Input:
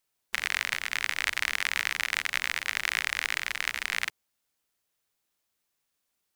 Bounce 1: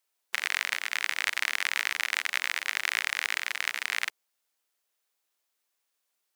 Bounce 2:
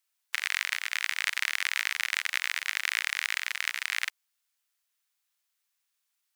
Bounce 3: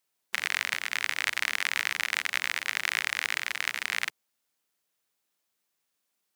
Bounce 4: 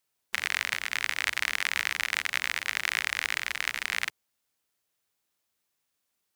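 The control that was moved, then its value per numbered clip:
high-pass, cutoff frequency: 390 Hz, 1.2 kHz, 140 Hz, 45 Hz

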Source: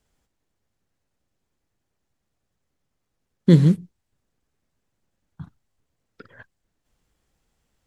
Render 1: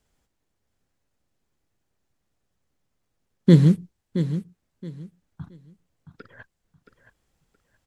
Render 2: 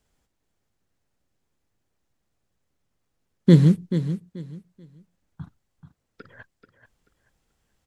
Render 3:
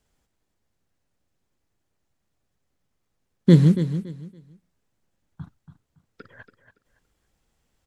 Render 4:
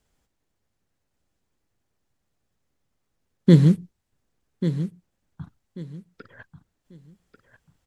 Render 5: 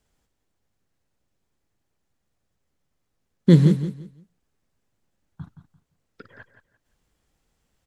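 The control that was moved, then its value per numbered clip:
feedback delay, time: 672 ms, 434 ms, 282 ms, 1140 ms, 172 ms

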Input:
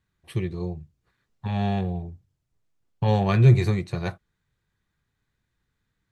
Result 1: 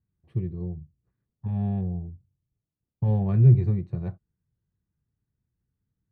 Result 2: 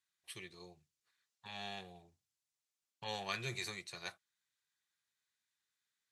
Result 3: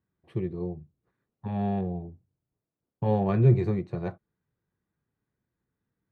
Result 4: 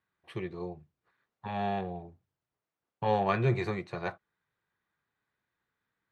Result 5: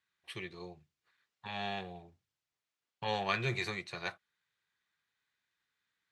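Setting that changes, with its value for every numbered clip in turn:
band-pass filter, frequency: 110 Hz, 7.4 kHz, 330 Hz, 1 kHz, 2.9 kHz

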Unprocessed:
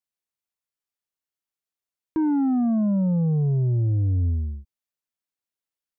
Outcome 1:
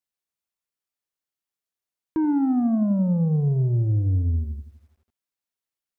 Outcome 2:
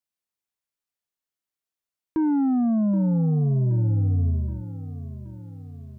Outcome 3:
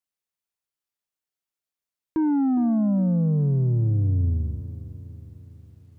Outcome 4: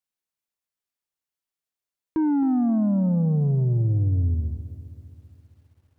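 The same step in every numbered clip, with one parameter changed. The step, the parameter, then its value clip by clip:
bit-crushed delay, time: 83 ms, 774 ms, 411 ms, 265 ms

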